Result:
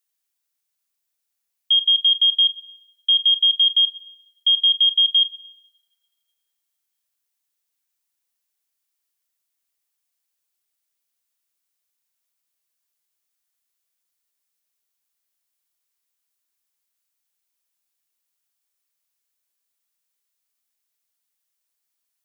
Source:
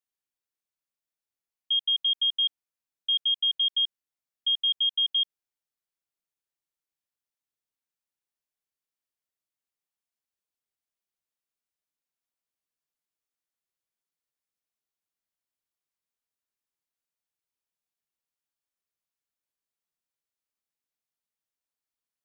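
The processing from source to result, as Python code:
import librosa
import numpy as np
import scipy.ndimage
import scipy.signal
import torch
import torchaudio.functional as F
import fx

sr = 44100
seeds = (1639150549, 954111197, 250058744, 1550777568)

y = fx.tilt_eq(x, sr, slope=2.5)
y = fx.rev_double_slope(y, sr, seeds[0], early_s=0.78, late_s=2.2, knee_db=-25, drr_db=13.5)
y = y * librosa.db_to_amplitude(5.0)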